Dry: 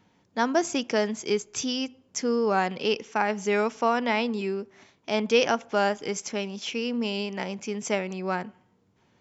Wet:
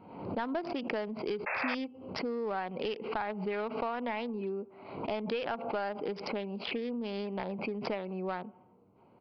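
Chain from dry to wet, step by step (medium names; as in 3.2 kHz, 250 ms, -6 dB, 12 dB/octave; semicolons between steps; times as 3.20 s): local Wiener filter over 25 samples; dynamic bell 190 Hz, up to +3 dB, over -38 dBFS, Q 1.2; compression 10:1, threshold -37 dBFS, peak gain reduction 21 dB; overdrive pedal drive 16 dB, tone 2.2 kHz, clips at -20.5 dBFS; painted sound noise, 1.46–1.75 s, 490–2700 Hz -35 dBFS; resampled via 11.025 kHz; swell ahead of each attack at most 65 dB/s; trim +1 dB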